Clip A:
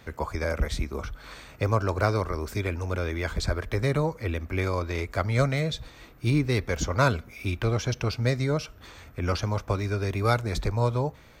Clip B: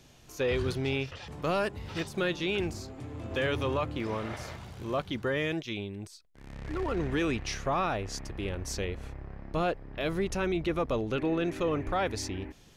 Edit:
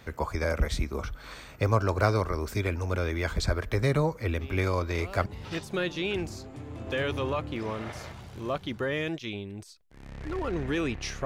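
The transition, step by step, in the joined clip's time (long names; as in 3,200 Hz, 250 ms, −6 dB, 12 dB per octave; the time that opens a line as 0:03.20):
clip A
0:04.39: mix in clip B from 0:00.83 0.87 s −14.5 dB
0:05.26: continue with clip B from 0:01.70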